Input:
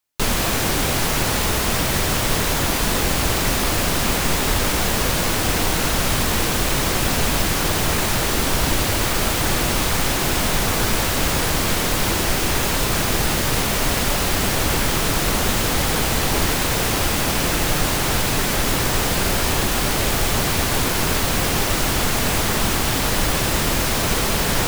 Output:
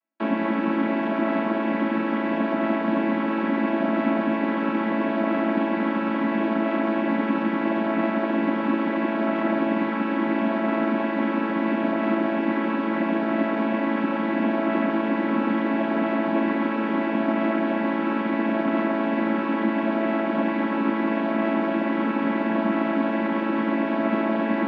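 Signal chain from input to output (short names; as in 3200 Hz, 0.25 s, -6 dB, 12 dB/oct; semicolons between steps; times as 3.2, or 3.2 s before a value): chord vocoder major triad, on A3; LPF 2400 Hz 24 dB/oct; notch 450 Hz, Q 12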